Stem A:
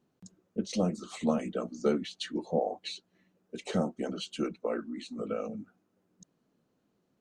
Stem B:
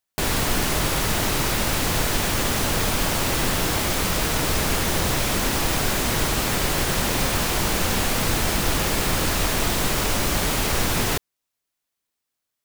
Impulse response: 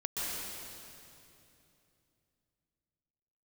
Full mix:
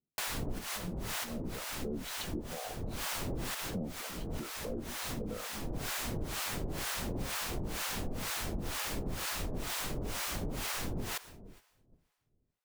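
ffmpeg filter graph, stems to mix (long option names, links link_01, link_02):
-filter_complex "[0:a]alimiter=limit=-22.5dB:level=0:latency=1:release=33,dynaudnorm=framelen=420:gausssize=7:maxgain=7dB,lowshelf=frequency=120:gain=12,volume=-10.5dB,asplit=2[link_01][link_02];[1:a]acrossover=split=470[link_03][link_04];[link_04]acompressor=threshold=-23dB:ratio=6[link_05];[link_03][link_05]amix=inputs=2:normalize=0,volume=-6dB,asplit=2[link_06][link_07];[link_07]volume=-22dB[link_08];[link_02]apad=whole_len=557836[link_09];[link_06][link_09]sidechaincompress=threshold=-43dB:ratio=10:attack=31:release=390[link_10];[2:a]atrim=start_sample=2205[link_11];[link_08][link_11]afir=irnorm=-1:irlink=0[link_12];[link_01][link_10][link_12]amix=inputs=3:normalize=0,acrossover=split=680[link_13][link_14];[link_13]aeval=exprs='val(0)*(1-1/2+1/2*cos(2*PI*2.1*n/s))':channel_layout=same[link_15];[link_14]aeval=exprs='val(0)*(1-1/2-1/2*cos(2*PI*2.1*n/s))':channel_layout=same[link_16];[link_15][link_16]amix=inputs=2:normalize=0,agate=range=-10dB:threshold=-55dB:ratio=16:detection=peak,acompressor=threshold=-33dB:ratio=4"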